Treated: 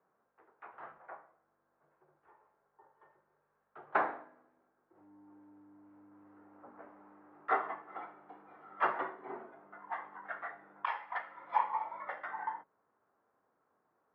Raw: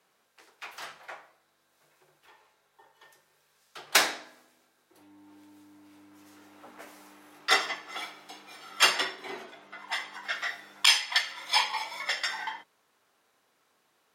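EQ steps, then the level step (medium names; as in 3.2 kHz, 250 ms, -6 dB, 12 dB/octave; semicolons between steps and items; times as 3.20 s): low-pass 1.4 kHz 24 dB/octave; dynamic bell 950 Hz, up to +4 dB, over -43 dBFS, Q 1.2; -4.0 dB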